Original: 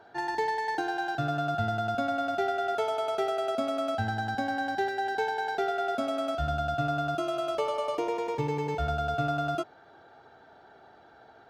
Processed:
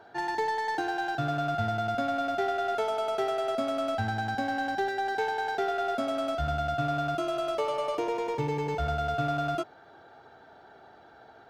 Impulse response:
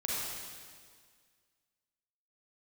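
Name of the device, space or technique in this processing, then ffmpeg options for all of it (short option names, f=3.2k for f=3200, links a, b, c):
parallel distortion: -filter_complex "[0:a]asplit=2[a][b];[b]asoftclip=type=hard:threshold=-32dB,volume=-6dB[c];[a][c]amix=inputs=2:normalize=0,volume=-2dB"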